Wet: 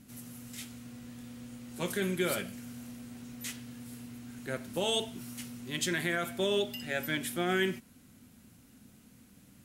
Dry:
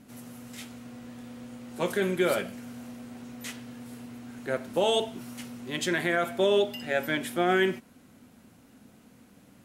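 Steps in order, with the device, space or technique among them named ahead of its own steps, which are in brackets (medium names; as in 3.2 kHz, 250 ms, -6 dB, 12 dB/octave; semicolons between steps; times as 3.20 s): smiley-face EQ (bass shelf 150 Hz +5 dB; peaking EQ 660 Hz -7.5 dB 2.2 oct; treble shelf 6 kHz +6 dB); trim -2 dB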